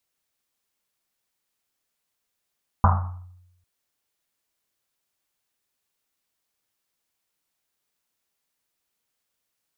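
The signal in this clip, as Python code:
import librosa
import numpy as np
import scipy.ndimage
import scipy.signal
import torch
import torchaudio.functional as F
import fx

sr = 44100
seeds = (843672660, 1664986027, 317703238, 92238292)

y = fx.risset_drum(sr, seeds[0], length_s=0.8, hz=90.0, decay_s=0.93, noise_hz=1000.0, noise_width_hz=610.0, noise_pct=35)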